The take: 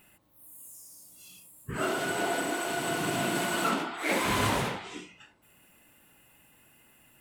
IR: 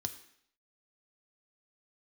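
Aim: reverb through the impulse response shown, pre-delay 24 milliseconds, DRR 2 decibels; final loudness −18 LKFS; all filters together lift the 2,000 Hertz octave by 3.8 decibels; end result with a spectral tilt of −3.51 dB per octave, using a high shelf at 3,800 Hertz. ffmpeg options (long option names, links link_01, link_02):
-filter_complex "[0:a]equalizer=frequency=2000:width_type=o:gain=4.5,highshelf=frequency=3800:gain=3,asplit=2[link_01][link_02];[1:a]atrim=start_sample=2205,adelay=24[link_03];[link_02][link_03]afir=irnorm=-1:irlink=0,volume=-1dB[link_04];[link_01][link_04]amix=inputs=2:normalize=0,volume=7dB"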